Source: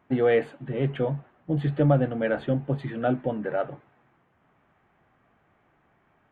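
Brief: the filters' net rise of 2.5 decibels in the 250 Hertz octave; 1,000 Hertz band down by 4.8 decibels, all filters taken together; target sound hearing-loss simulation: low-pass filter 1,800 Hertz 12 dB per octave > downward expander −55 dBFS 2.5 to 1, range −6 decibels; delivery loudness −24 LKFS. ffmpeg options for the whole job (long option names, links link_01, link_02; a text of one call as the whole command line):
ffmpeg -i in.wav -af "lowpass=1800,equalizer=frequency=250:width_type=o:gain=3.5,equalizer=frequency=1000:width_type=o:gain=-8.5,agate=range=-6dB:threshold=-55dB:ratio=2.5,volume=2dB" out.wav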